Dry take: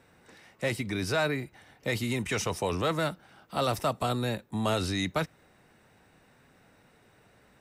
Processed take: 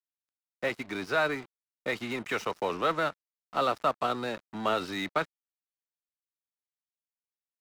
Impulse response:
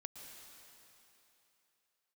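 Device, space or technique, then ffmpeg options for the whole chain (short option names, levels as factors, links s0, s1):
pocket radio on a weak battery: -af "highpass=250,lowpass=3800,aeval=exprs='sgn(val(0))*max(abs(val(0))-0.00631,0)':c=same,equalizer=f=1300:t=o:w=0.53:g=5,volume=1.12"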